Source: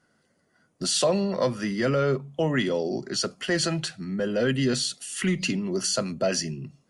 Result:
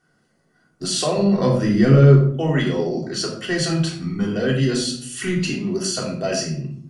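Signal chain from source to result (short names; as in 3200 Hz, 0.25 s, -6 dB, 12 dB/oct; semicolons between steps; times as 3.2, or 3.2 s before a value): 1.18–2.35 low shelf 370 Hz +9.5 dB; 3.88–4.35 comb 0.9 ms, depth 94%; shoebox room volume 850 m³, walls furnished, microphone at 3.5 m; gain -1.5 dB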